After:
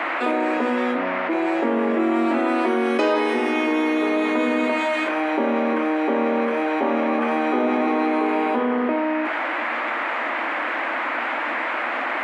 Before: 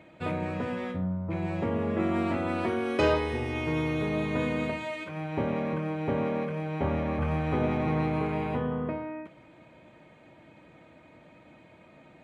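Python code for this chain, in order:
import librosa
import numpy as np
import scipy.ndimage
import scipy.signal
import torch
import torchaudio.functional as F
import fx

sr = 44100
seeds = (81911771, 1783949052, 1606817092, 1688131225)

y = scipy.signal.sosfilt(scipy.signal.cheby1(6, 3, 230.0, 'highpass', fs=sr, output='sos'), x)
y = fx.dmg_noise_band(y, sr, seeds[0], low_hz=550.0, high_hz=2200.0, level_db=-47.0)
y = fx.env_flatten(y, sr, amount_pct=70)
y = y * 10.0 ** (5.0 / 20.0)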